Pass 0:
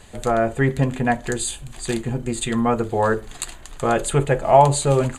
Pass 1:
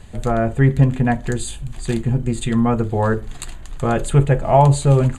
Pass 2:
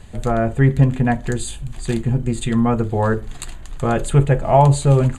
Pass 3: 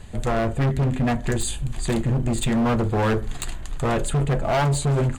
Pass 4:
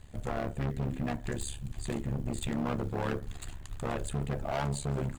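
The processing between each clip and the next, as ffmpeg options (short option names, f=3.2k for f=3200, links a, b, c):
-af "bass=f=250:g=10,treble=f=4k:g=-3,volume=-1.5dB"
-af anull
-af "dynaudnorm=f=170:g=5:m=3dB,asoftclip=type=hard:threshold=-18dB"
-af "acrusher=bits=8:mode=log:mix=0:aa=0.000001,tremolo=f=70:d=0.857,volume=-8dB"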